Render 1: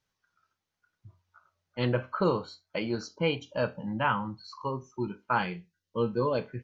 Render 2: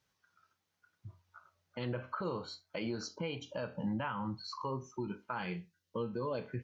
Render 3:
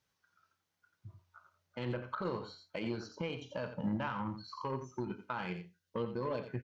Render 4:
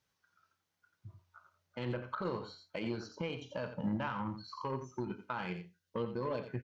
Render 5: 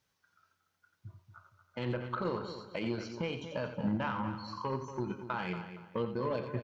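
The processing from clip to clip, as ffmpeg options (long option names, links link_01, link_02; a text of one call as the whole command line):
ffmpeg -i in.wav -af "acompressor=threshold=-33dB:ratio=6,highpass=49,alimiter=level_in=6.5dB:limit=-24dB:level=0:latency=1:release=91,volume=-6.5dB,volume=2.5dB" out.wav
ffmpeg -i in.wav -filter_complex "[0:a]aeval=exprs='0.0422*(cos(1*acos(clip(val(0)/0.0422,-1,1)))-cos(1*PI/2))+0.00473*(cos(3*acos(clip(val(0)/0.0422,-1,1)))-cos(3*PI/2))':channel_layout=same,aecho=1:1:87:0.299,acrossover=split=3600[link_01][link_02];[link_02]acompressor=threshold=-59dB:ratio=4:attack=1:release=60[link_03];[link_01][link_03]amix=inputs=2:normalize=0,volume=1.5dB" out.wav
ffmpeg -i in.wav -af anull out.wav
ffmpeg -i in.wav -filter_complex "[0:a]asplit=2[link_01][link_02];[link_02]adelay=233,lowpass=frequency=4500:poles=1,volume=-10.5dB,asplit=2[link_03][link_04];[link_04]adelay=233,lowpass=frequency=4500:poles=1,volume=0.31,asplit=2[link_05][link_06];[link_06]adelay=233,lowpass=frequency=4500:poles=1,volume=0.31[link_07];[link_01][link_03][link_05][link_07]amix=inputs=4:normalize=0,volume=2.5dB" out.wav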